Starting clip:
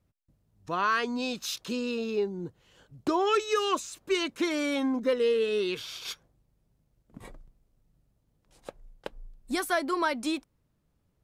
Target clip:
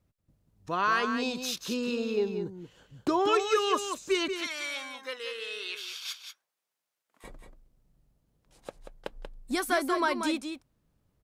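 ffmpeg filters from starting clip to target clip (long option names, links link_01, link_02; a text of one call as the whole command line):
ffmpeg -i in.wav -filter_complex "[0:a]asettb=1/sr,asplit=3[link_01][link_02][link_03];[link_01]atrim=end=4.284[link_04];[link_02]atrim=start=4.28:end=7.24,asetpts=PTS-STARTPTS,afade=type=in:duration=0.004:curve=qsin,afade=type=out:start_time=2.956:duration=0.004:curve=qsin,highpass=1200[link_05];[link_03]atrim=start=7.236[link_06];[link_04][link_05]acrossfade=duration=0.004:curve1=hsin:curve2=qsin[link_07];[link_07][link_06]acrossfade=duration=0.004:curve1=qsin:curve2=hsin,aecho=1:1:185:0.422" out.wav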